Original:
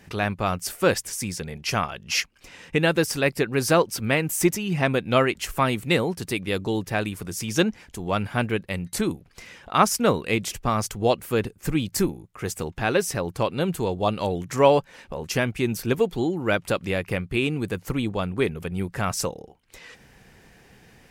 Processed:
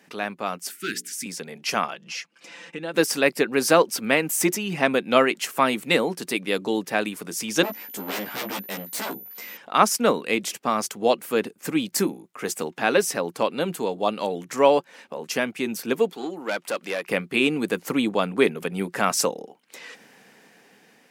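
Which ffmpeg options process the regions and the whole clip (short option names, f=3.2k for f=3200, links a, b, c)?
-filter_complex "[0:a]asettb=1/sr,asplit=3[a][b][c];[a]atrim=end=0.704[d];[b]atrim=start=0.7:end=1.26,asetpts=PTS-STARTPTS,afade=t=in:d=0.004:c=qsin,afade=t=out:st=0.556:d=0.004:c=qsin,bandreject=f=60:t=h:w=6,bandreject=f=120:t=h:w=6,bandreject=f=180:t=h:w=6,bandreject=f=240:t=h:w=6,bandreject=f=300:t=h:w=6,bandreject=f=360:t=h:w=6,bandreject=f=420:t=h:w=6,bandreject=f=480:t=h:w=6,bandreject=f=540:t=h:w=6,asoftclip=type=hard:threshold=-14.5dB,asuperstop=centerf=720:order=12:qfactor=0.74[e];[c]atrim=start=1.256[f];[d][e]acrossfade=d=0.004:c1=hsin:c2=qsin[g];[g][f]acrossfade=d=0.004:c1=qsin:c2=hsin,asettb=1/sr,asplit=3[h][i][j];[h]atrim=end=1.944[k];[i]atrim=start=1.94:end=2.94,asetpts=PTS-STARTPTS,afade=t=in:d=0.004:c=qsin,afade=t=out:st=0.996:d=0.004:c=qsin,lowpass=8.3k,aecho=1:1:5.9:0.68,atrim=end_sample=44100,acompressor=threshold=-42dB:ratio=2:attack=3.2:release=140:knee=1:detection=peak[l];[j]atrim=start=2.936[m];[k][l]acrossfade=d=0.004:c1=hsin:c2=qsin[n];[n][m]acrossfade=d=0.004:c1=qsin:c2=hsin,asettb=1/sr,asplit=3[o][p][q];[o]atrim=end=7.634[r];[p]atrim=start=7.63:end=9.57,asetpts=PTS-STARTPTS,afade=t=in:d=0.004:c=qsin,afade=t=out:st=1.936:d=0.004:c=qsin,aeval=exprs='0.0422*(abs(mod(val(0)/0.0422+3,4)-2)-1)':c=same,aeval=exprs='val(0)+0.00631*sin(2*PI*14000*n/s)':c=same,asplit=2[s][t];[t]adelay=15,volume=-2dB[u];[s][u]amix=inputs=2:normalize=0,atrim=end_sample=85554[v];[q]atrim=start=9.566[w];[r][v]acrossfade=d=0.004:c1=hsin:c2=qsin[x];[x][w]acrossfade=d=0.004:c1=qsin:c2=hsin,asettb=1/sr,asplit=3[y][z][aa];[y]atrim=end=16.124[ab];[z]atrim=start=16.12:end=17.09,asetpts=PTS-STARTPTS,afade=t=in:d=0.004:c=qsin,afade=t=out:st=0.966:d=0.004:c=qsin,highpass=f=420:p=1,aeval=exprs='(tanh(12.6*val(0)+0.4)-tanh(0.4))/12.6':c=same[ac];[aa]atrim=start=17.086[ad];[ab][ac]acrossfade=d=0.004:c1=hsin:c2=qsin[ae];[ae][ad]acrossfade=d=0.004:c1=qsin:c2=hsin,dynaudnorm=f=500:g=7:m=11.5dB,highpass=f=210:w=0.5412,highpass=f=210:w=1.3066,bandreject=f=360:w=12,volume=-3dB"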